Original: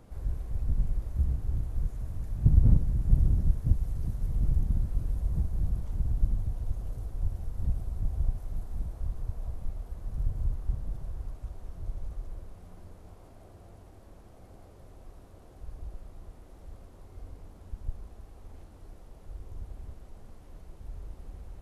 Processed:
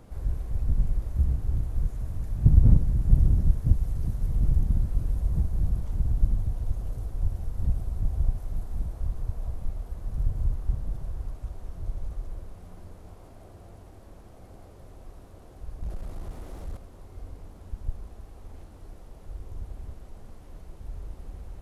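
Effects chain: 15.81–16.77 s: waveshaping leveller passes 2; trim +3.5 dB

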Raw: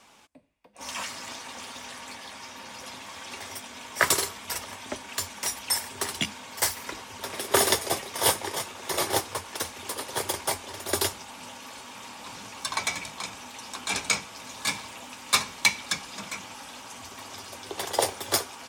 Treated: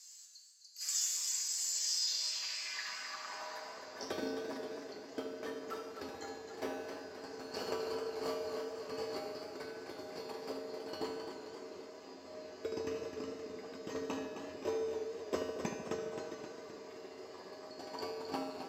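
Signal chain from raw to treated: split-band scrambler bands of 4 kHz; high-pass 55 Hz; band-stop 1.4 kHz, Q 11; in parallel at +1 dB: compression, threshold -36 dBFS, peak gain reduction 19 dB; on the sum: feedback comb 89 Hz, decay 1.1 s, harmonics odd, mix 90%; on a send: filtered feedback delay 74 ms, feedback 75%, low-pass 2 kHz, level -7.5 dB; on the sum: band-pass sweep 7.9 kHz -> 400 Hz, 1.67–4.08 s; modulated delay 262 ms, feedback 58%, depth 83 cents, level -8 dB; trim +17.5 dB

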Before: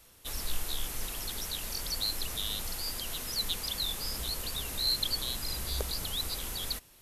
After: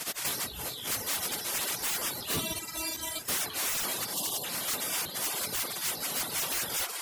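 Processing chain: 2.29–3.29 s: inharmonic resonator 320 Hz, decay 0.76 s, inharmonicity 0.002; 5.20–5.66 s: band-stop 1.8 kHz; reverberation RT60 0.30 s, pre-delay 3 ms, DRR -4.5 dB; spectral gate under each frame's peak -30 dB weak; compressor with a negative ratio -43 dBFS, ratio -0.5; 4.14–4.44 s: spectral selection erased 1.2–2.7 kHz; feedback echo behind a low-pass 62 ms, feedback 68%, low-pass 1.7 kHz, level -12 dB; sine folder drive 14 dB, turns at -25.5 dBFS; reverb removal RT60 0.77 s; crackling interface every 0.19 s, samples 512, repeat, from 0.66 s

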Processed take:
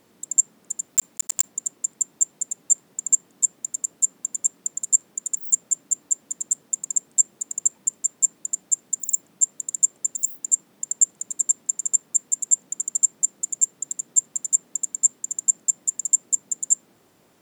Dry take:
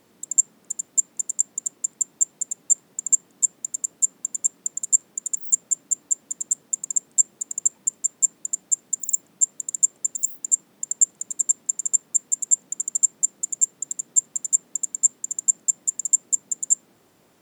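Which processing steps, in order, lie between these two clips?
0.90–1.49 s: block-companded coder 3-bit

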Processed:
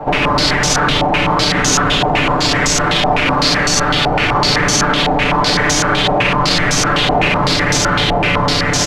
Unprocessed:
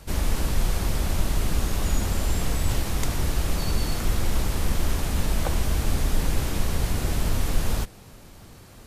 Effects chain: spectral peaks clipped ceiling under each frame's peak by 20 dB; comb 6.8 ms, depth 89%; compressor with a negative ratio -24 dBFS, ratio -1; on a send: delay 990 ms -8.5 dB; on the sum: Schroeder reverb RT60 3.5 s, combs from 30 ms, DRR -4 dB; loudness maximiser +15.5 dB; step-sequenced low-pass 7.9 Hz 790–6100 Hz; trim -5.5 dB

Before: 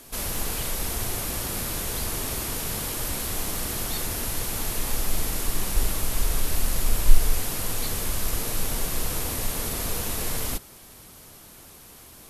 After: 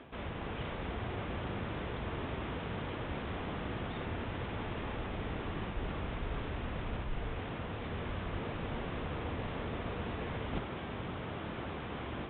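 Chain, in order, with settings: level rider gain up to 13 dB; high-pass 65 Hz 12 dB/octave; reverse; compression 12:1, threshold -37 dBFS, peak gain reduction 22 dB; reverse; resampled via 8 kHz; distance through air 370 m; on a send: flutter echo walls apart 9.8 m, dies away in 0.27 s; on the sum: trim +6 dB

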